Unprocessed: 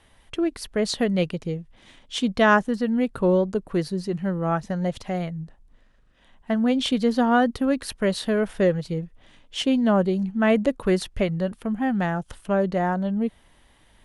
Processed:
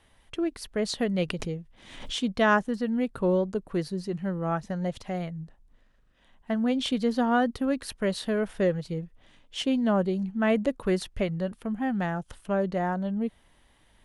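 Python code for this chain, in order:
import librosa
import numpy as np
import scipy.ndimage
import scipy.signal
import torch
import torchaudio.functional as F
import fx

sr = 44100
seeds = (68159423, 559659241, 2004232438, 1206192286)

y = fx.pre_swell(x, sr, db_per_s=70.0, at=(1.28, 2.15), fade=0.02)
y = y * 10.0 ** (-4.5 / 20.0)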